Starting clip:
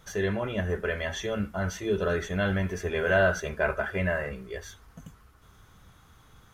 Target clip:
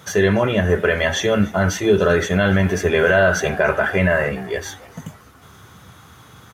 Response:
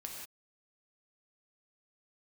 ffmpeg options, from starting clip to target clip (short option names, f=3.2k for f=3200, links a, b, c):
-filter_complex "[0:a]highpass=f=85:w=0.5412,highpass=f=85:w=1.3066,asplit=2[a][b];[b]asplit=3[c][d][e];[c]adelay=291,afreqshift=100,volume=-22.5dB[f];[d]adelay=582,afreqshift=200,volume=-28.9dB[g];[e]adelay=873,afreqshift=300,volume=-35.3dB[h];[f][g][h]amix=inputs=3:normalize=0[i];[a][i]amix=inputs=2:normalize=0,alimiter=level_in=18dB:limit=-1dB:release=50:level=0:latency=1,volume=-5dB"